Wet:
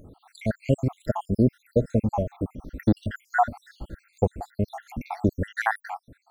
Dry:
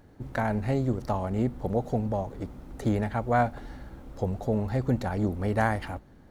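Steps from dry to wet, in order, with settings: random spectral dropouts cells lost 77%; gain +7.5 dB

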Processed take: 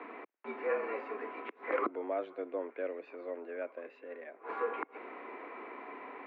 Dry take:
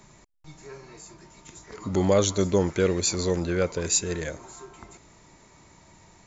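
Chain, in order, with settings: flipped gate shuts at -28 dBFS, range -25 dB; mistuned SSB +84 Hz 220–2400 Hz; gain +11 dB

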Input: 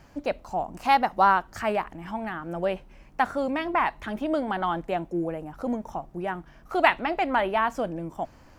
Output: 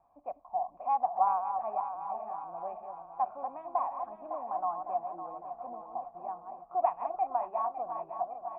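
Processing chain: regenerating reverse delay 0.278 s, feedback 73%, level -7.5 dB; vocal tract filter a

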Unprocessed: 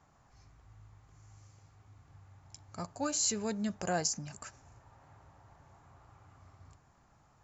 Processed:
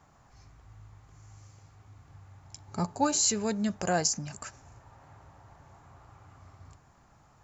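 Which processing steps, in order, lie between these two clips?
2.67–3.21 small resonant body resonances 200/390/850/3900 Hz, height 10 dB; gain +5 dB

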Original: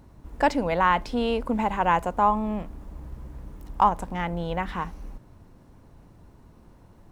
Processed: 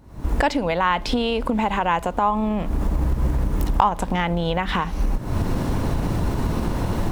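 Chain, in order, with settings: recorder AGC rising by 78 dB/s; dynamic EQ 3400 Hz, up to +6 dB, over -44 dBFS, Q 1.3

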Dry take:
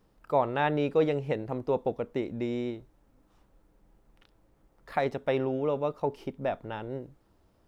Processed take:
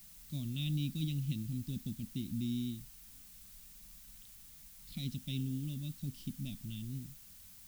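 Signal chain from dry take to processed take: companded quantiser 8-bit; elliptic band-stop 220–3400 Hz, stop band 40 dB; added noise blue -58 dBFS; gain +2 dB

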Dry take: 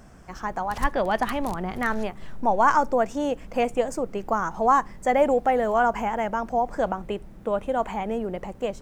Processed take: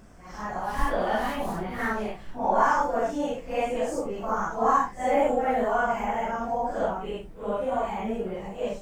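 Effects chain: phase scrambler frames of 0.2 s; gain -2 dB

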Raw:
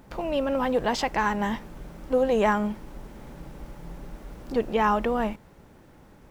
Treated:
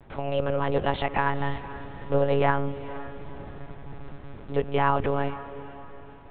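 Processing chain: monotone LPC vocoder at 8 kHz 140 Hz; diffused feedback echo 0.481 s, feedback 41%, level -14.5 dB

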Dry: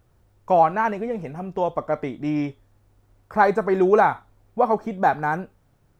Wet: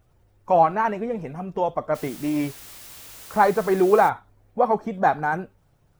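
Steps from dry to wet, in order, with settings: bin magnitudes rounded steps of 15 dB; 1.94–4.08 added noise white -43 dBFS

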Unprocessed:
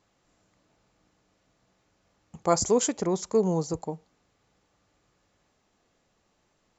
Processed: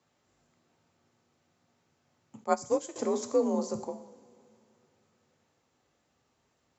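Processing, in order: two-slope reverb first 0.75 s, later 3.3 s, from -19 dB, DRR 7 dB; frequency shift +51 Hz; 2.44–2.96 upward expander 2.5:1, over -26 dBFS; gain -4 dB

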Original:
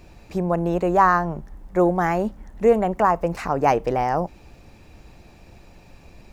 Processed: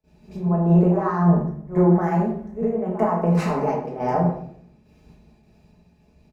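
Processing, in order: gate with hold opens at -39 dBFS; HPF 94 Hz 12 dB/oct; tilt shelf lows +6.5 dB, about 1200 Hz; comb 4.8 ms, depth 42%; pre-echo 74 ms -16 dB; compressor 16:1, threshold -20 dBFS, peak gain reduction 16 dB; random-step tremolo 3.5 Hz; shoebox room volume 250 m³, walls mixed, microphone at 1.5 m; three-band expander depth 70%

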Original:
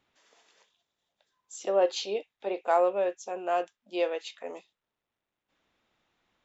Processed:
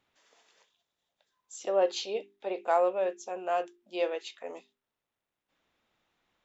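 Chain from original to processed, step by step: notches 50/100/150/200/250/300/350/400 Hz; gain -1.5 dB

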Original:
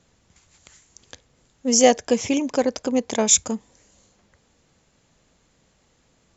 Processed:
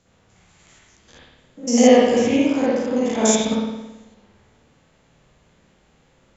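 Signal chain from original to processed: stepped spectrum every 0.1 s; spring tank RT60 1 s, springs 55 ms, chirp 45 ms, DRR -7.5 dB; gain -1 dB

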